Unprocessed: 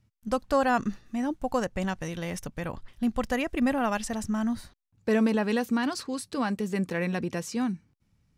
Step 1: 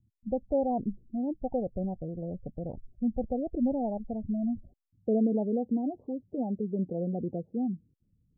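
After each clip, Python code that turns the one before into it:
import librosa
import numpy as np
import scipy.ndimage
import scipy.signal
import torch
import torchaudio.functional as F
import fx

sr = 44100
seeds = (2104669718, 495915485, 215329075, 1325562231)

y = scipy.signal.sosfilt(scipy.signal.butter(8, 750.0, 'lowpass', fs=sr, output='sos'), x)
y = fx.spec_gate(y, sr, threshold_db=-25, keep='strong')
y = F.gain(torch.from_numpy(y), -2.0).numpy()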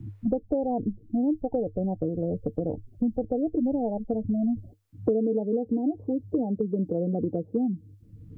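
y = fx.peak_eq(x, sr, hz=100.0, db=14.5, octaves=0.24)
y = fx.small_body(y, sr, hz=(310.0, 450.0), ring_ms=90, db=12)
y = fx.band_squash(y, sr, depth_pct=100)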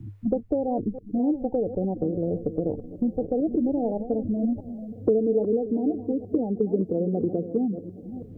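y = fx.reverse_delay(x, sr, ms=329, wet_db=-11.5)
y = fx.echo_wet_lowpass(y, sr, ms=819, feedback_pct=67, hz=500.0, wet_db=-18)
y = fx.dynamic_eq(y, sr, hz=390.0, q=3.2, threshold_db=-41.0, ratio=4.0, max_db=6)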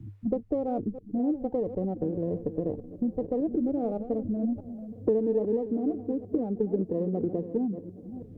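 y = fx.running_max(x, sr, window=3)
y = F.gain(torch.from_numpy(y), -3.5).numpy()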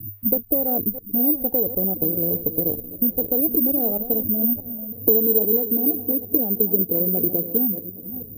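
y = (np.kron(x[::3], np.eye(3)[0]) * 3)[:len(x)]
y = F.gain(torch.from_numpy(y), 3.0).numpy()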